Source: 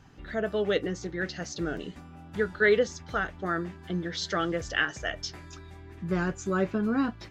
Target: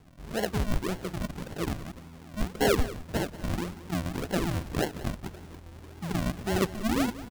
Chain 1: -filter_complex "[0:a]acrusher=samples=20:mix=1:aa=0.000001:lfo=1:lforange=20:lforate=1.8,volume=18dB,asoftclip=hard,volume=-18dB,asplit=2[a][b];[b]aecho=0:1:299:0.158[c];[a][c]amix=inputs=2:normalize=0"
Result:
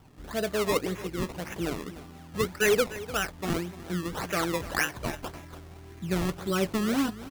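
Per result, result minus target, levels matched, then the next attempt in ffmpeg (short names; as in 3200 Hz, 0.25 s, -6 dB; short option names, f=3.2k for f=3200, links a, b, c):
echo 0.113 s late; decimation with a swept rate: distortion -16 dB
-filter_complex "[0:a]acrusher=samples=20:mix=1:aa=0.000001:lfo=1:lforange=20:lforate=1.8,volume=18dB,asoftclip=hard,volume=-18dB,asplit=2[a][b];[b]aecho=0:1:186:0.158[c];[a][c]amix=inputs=2:normalize=0"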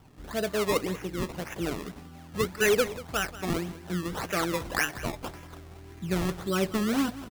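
decimation with a swept rate: distortion -16 dB
-filter_complex "[0:a]acrusher=samples=71:mix=1:aa=0.000001:lfo=1:lforange=71:lforate=1.8,volume=18dB,asoftclip=hard,volume=-18dB,asplit=2[a][b];[b]aecho=0:1:186:0.158[c];[a][c]amix=inputs=2:normalize=0"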